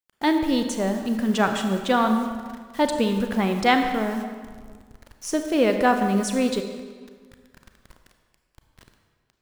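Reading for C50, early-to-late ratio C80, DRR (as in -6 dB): 6.5 dB, 7.5 dB, 5.5 dB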